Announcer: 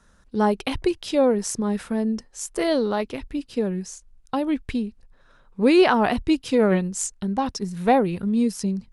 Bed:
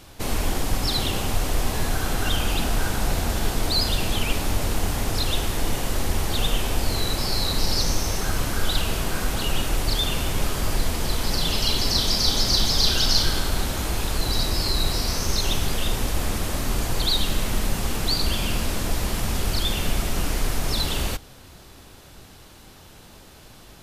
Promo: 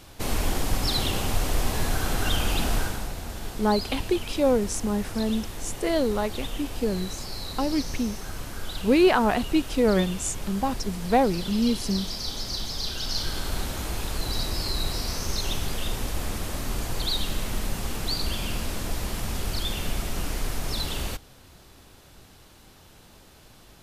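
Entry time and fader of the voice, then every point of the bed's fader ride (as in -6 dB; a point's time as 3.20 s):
3.25 s, -2.5 dB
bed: 2.76 s -1.5 dB
3.13 s -11 dB
12.96 s -11 dB
13.53 s -5 dB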